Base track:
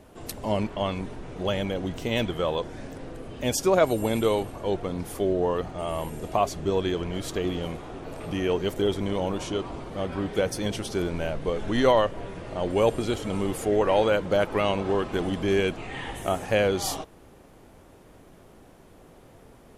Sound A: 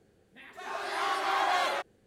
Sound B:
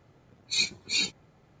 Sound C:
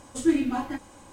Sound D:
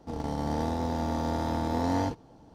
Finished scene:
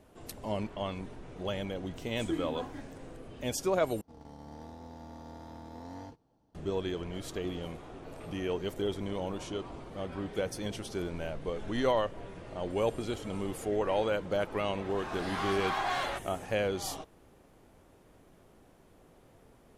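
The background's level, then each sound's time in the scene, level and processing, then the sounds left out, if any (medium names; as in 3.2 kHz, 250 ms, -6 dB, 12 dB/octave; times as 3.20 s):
base track -8 dB
2.04 s: add C -13 dB
4.01 s: replace with D -17.5 dB
14.37 s: add A -4.5 dB
not used: B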